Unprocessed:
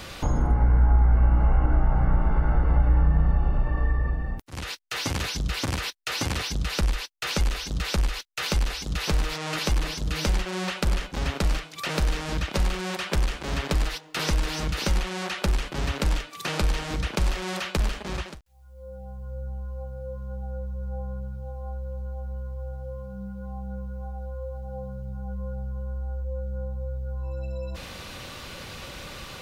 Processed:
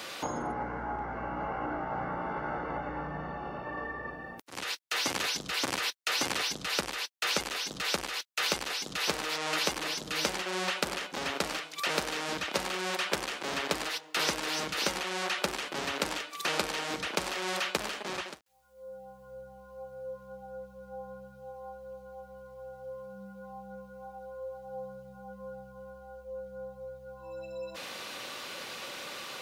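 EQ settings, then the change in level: HPF 290 Hz 12 dB/oct; low shelf 380 Hz -3 dB; 0.0 dB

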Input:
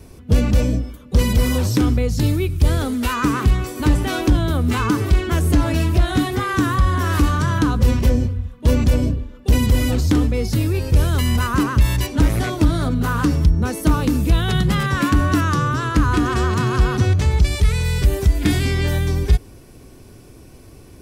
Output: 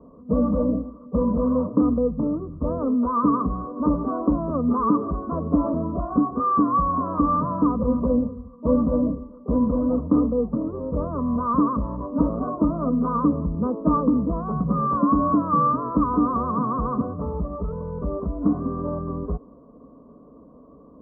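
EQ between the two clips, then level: HPF 280 Hz 6 dB/oct; rippled Chebyshev low-pass 1200 Hz, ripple 3 dB; fixed phaser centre 540 Hz, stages 8; +6.0 dB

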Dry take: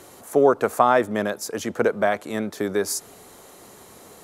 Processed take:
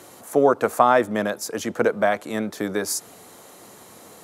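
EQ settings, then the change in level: HPF 95 Hz; notch 400 Hz, Q 12; +1.0 dB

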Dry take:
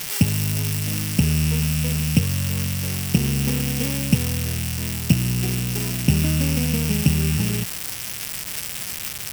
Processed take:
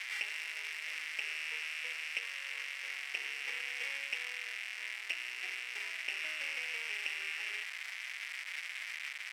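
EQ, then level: inverse Chebyshev high-pass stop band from 160 Hz, stop band 50 dB; synth low-pass 2100 Hz, resonance Q 3.8; differentiator; 0.0 dB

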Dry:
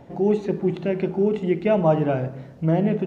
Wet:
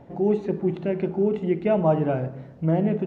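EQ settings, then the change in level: high shelf 3100 Hz -9 dB; -1.5 dB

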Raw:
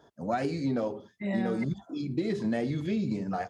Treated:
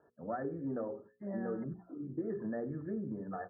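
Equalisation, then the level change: rippled Chebyshev low-pass 1800 Hz, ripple 6 dB; notches 60/120/180/240/300/360/420/480/540 Hz; -5.0 dB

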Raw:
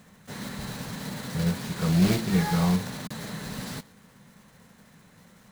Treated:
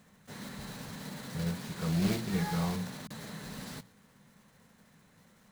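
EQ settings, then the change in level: notches 60/120/180 Hz; -7.0 dB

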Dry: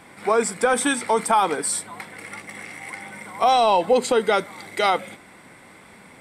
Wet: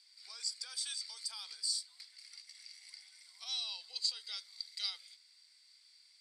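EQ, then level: ladder band-pass 4800 Hz, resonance 85%; 0.0 dB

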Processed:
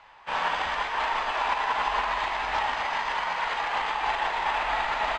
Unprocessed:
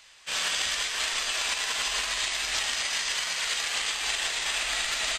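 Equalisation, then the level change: LPF 1600 Hz 12 dB/oct; bell 890 Hz +14.5 dB 0.52 oct; +5.0 dB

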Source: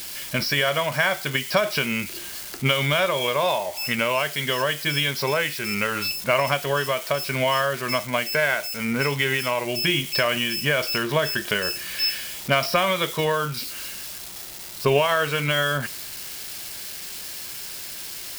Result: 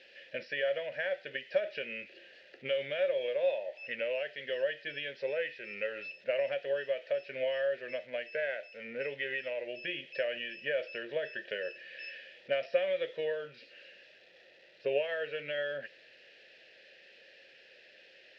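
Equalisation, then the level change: vowel filter e; LPF 4700 Hz 24 dB/oct; -2.0 dB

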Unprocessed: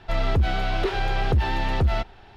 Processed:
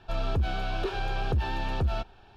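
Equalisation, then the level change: Butterworth band-stop 2000 Hz, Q 6; -6.0 dB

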